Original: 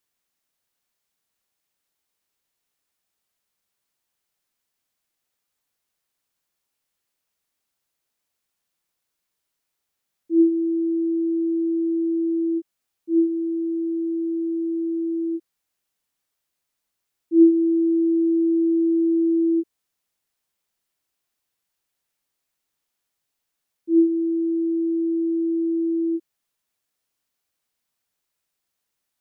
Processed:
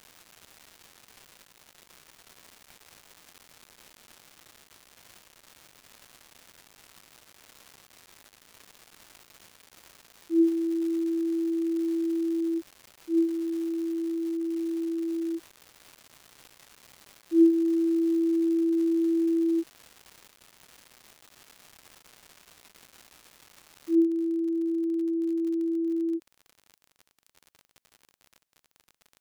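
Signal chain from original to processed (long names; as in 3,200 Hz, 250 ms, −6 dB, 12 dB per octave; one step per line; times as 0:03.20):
surface crackle 420 per second −33 dBFS, from 0:23.95 53 per second
level −5 dB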